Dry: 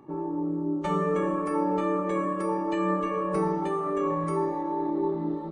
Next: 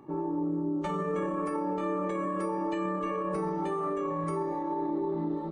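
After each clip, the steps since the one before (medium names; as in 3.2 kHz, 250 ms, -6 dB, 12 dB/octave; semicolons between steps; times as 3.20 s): peak limiter -23.5 dBFS, peak gain reduction 8 dB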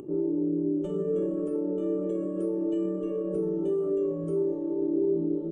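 FFT filter 260 Hz 0 dB, 380 Hz +8 dB, 630 Hz -3 dB, 950 Hz -25 dB, 1.4 kHz -16 dB, 2.1 kHz -27 dB, 3 kHz -6 dB, 4.4 kHz -22 dB, 7.6 kHz -5 dB, 11 kHz -12 dB; upward compressor, threshold -36 dBFS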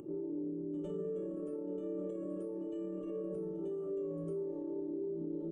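peak limiter -27 dBFS, peak gain reduction 9 dB; pre-echo 104 ms -12.5 dB; trim -6 dB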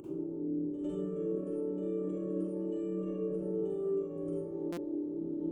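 reverberation RT60 0.75 s, pre-delay 39 ms, DRR -2.5 dB; buffer glitch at 4.72 s, samples 256, times 8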